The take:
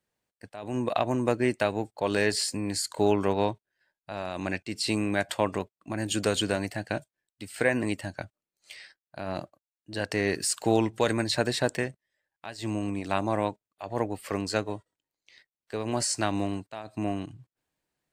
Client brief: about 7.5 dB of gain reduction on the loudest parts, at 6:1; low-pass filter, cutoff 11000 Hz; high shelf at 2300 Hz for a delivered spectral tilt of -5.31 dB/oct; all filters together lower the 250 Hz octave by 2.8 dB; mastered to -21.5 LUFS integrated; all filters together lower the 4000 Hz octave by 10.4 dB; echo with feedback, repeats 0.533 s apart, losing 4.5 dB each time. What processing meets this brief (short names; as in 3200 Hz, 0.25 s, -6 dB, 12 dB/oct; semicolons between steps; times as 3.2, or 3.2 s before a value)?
LPF 11000 Hz; bell 250 Hz -3.5 dB; high shelf 2300 Hz -7.5 dB; bell 4000 Hz -6 dB; compressor 6:1, threshold -28 dBFS; feedback echo 0.533 s, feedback 60%, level -4.5 dB; gain +13.5 dB